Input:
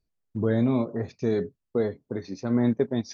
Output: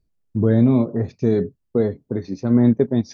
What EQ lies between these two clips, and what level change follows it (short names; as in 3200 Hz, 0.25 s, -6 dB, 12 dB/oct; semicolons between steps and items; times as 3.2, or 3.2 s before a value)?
low shelf 490 Hz +10 dB; 0.0 dB